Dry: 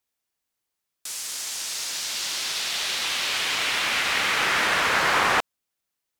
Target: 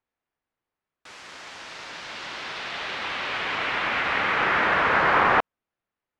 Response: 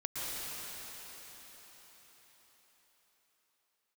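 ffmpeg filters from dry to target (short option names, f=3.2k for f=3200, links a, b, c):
-af "lowpass=1.8k,volume=3.5dB"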